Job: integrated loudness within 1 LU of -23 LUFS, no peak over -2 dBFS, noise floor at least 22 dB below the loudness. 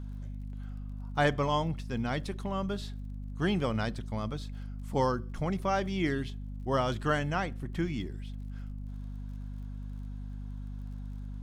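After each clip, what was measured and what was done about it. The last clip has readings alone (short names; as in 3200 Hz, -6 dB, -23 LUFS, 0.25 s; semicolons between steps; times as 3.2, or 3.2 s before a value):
ticks 42/s; hum 50 Hz; harmonics up to 250 Hz; hum level -37 dBFS; loudness -34.0 LUFS; peak -12.5 dBFS; loudness target -23.0 LUFS
-> de-click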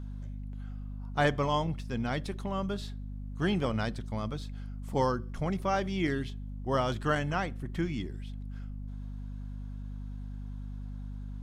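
ticks 0.088/s; hum 50 Hz; harmonics up to 250 Hz; hum level -37 dBFS
-> notches 50/100/150/200/250 Hz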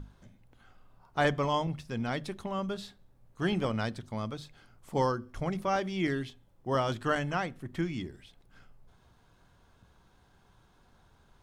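hum none; loudness -33.0 LUFS; peak -14.0 dBFS; loudness target -23.0 LUFS
-> gain +10 dB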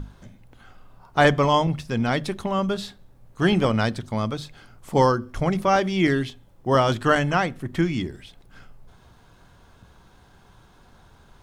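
loudness -23.0 LUFS; peak -4.0 dBFS; noise floor -54 dBFS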